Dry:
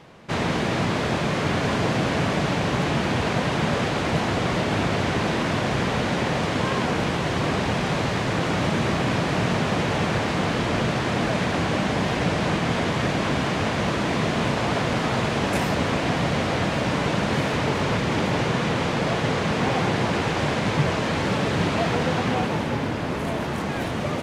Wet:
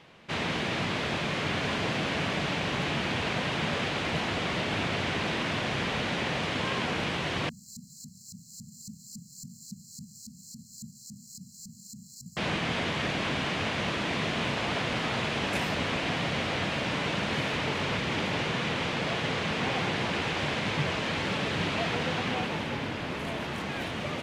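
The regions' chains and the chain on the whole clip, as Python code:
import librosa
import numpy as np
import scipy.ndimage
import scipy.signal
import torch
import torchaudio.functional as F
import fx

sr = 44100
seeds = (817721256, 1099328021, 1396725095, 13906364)

y = fx.chain(x, sr, fx.resample_bad(factor=6, down='none', up='zero_stuff'),
    fx.filter_lfo_bandpass(shape='saw_up', hz=3.6, low_hz=230.0, high_hz=2300.0, q=2.3),
    fx.brickwall_bandstop(low_hz=240.0, high_hz=4000.0), at=(7.49, 12.37))
y = fx.peak_eq(y, sr, hz=2900.0, db=8.0, octaves=1.6)
y = fx.hum_notches(y, sr, base_hz=60, count=2)
y = y * 10.0 ** (-8.5 / 20.0)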